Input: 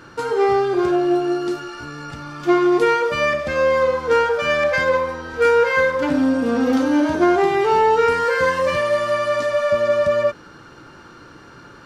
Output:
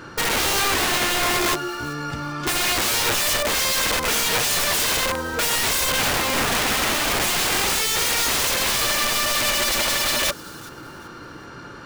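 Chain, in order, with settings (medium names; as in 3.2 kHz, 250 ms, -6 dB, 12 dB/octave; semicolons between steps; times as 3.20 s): integer overflow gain 20.5 dB; feedback echo behind a high-pass 384 ms, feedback 32%, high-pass 3.7 kHz, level -19 dB; trim +4 dB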